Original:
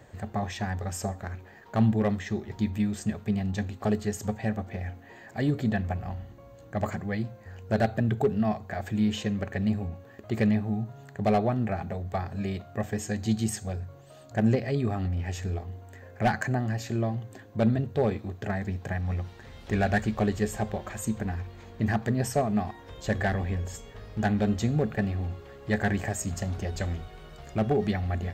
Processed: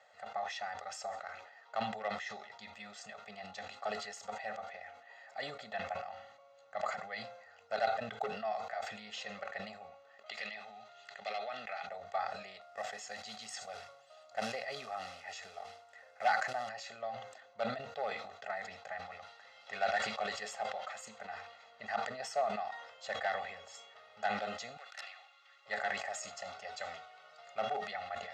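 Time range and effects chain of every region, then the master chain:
10.26–11.87 weighting filter D + compressor 3:1, threshold -31 dBFS
12.61–16.69 HPF 60 Hz + companded quantiser 6-bit
24.77–25.66 HPF 1500 Hz + wrapped overs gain 31 dB
whole clip: Chebyshev band-pass 840–5000 Hz, order 2; comb 1.5 ms, depth 92%; sustainer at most 62 dB/s; gain -6.5 dB

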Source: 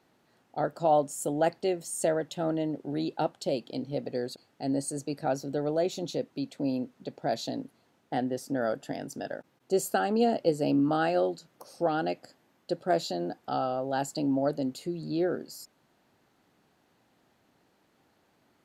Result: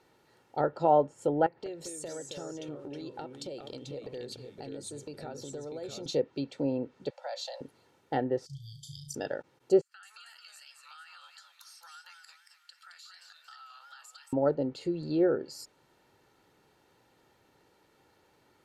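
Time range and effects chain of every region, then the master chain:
1.46–6.06 compressor, threshold -40 dBFS + echoes that change speed 0.2 s, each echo -2 st, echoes 2, each echo -6 dB
7.1–7.61 Chebyshev high-pass 510 Hz, order 10 + compressor 2:1, threshold -39 dBFS
8.46–9.15 brick-wall FIR band-stop 160–3000 Hz + flutter echo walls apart 6 m, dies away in 0.36 s
9.81–14.33 steep high-pass 1300 Hz + compressor 12:1, threshold -51 dBFS + warbling echo 0.225 s, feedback 41%, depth 183 cents, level -4.5 dB
whole clip: treble ducked by the level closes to 1800 Hz, closed at -26 dBFS; comb 2.2 ms, depth 48%; gain +1.5 dB

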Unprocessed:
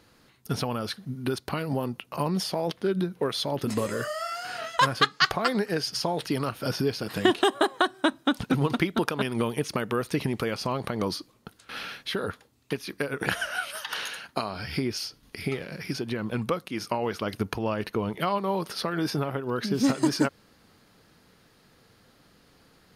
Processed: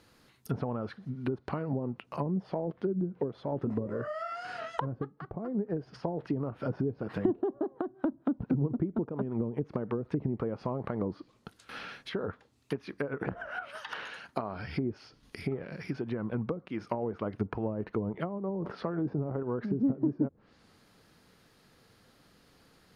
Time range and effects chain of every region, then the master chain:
18.52–19.43 high shelf 9200 Hz -10 dB + sustainer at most 52 dB/s
whole clip: treble ducked by the level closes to 370 Hz, closed at -22.5 dBFS; dynamic EQ 3700 Hz, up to -6 dB, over -53 dBFS, Q 0.84; gain -3 dB

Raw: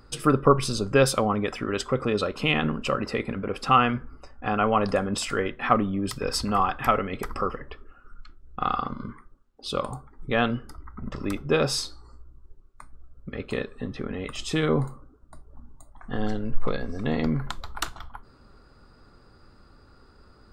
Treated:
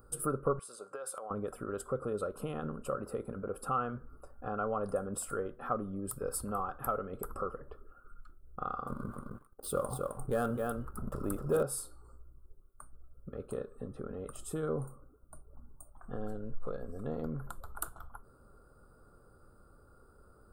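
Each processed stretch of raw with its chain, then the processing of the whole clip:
0.59–1.31 BPF 760–7400 Hz + compressor 10:1, threshold -30 dBFS
8.87–11.63 echo 0.262 s -7 dB + sample leveller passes 2
whole clip: compressor 1.5:1, threshold -36 dBFS; EQ curve 170 Hz 0 dB, 270 Hz -3 dB, 510 Hz +5 dB, 960 Hz -4 dB, 1400 Hz +3 dB, 2000 Hz -21 dB, 3000 Hz -16 dB, 6000 Hz -13 dB, 9300 Hz +13 dB; gain -6.5 dB

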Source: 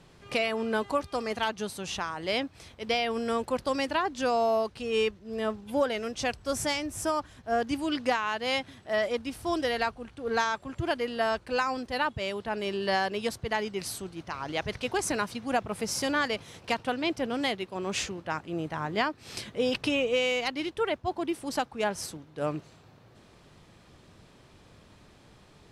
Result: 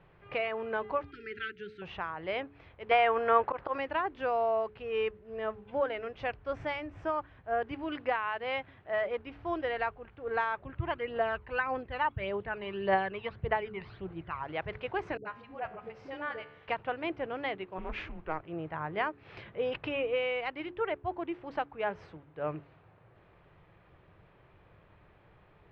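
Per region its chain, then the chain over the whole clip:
1.11–1.82 brick-wall FIR band-stop 450–1300 Hz + low shelf 180 Hz -7 dB
2.91–3.78 auto swell 0.122 s + bell 1100 Hz +12 dB 2.5 oct
10.58–14.43 inverse Chebyshev low-pass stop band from 8300 Hz + phaser 1.7 Hz, delay 1.1 ms, feedback 53%
15.17–16.68 resonator 74 Hz, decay 0.94 s + dispersion highs, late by 84 ms, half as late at 380 Hz
17.78–18.43 bell 470 Hz +8.5 dB 0.21 oct + frequency shift -160 Hz + Doppler distortion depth 0.23 ms
whole clip: LPF 2500 Hz 24 dB/oct; bell 240 Hz -12 dB 0.49 oct; de-hum 71.23 Hz, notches 6; gain -3 dB

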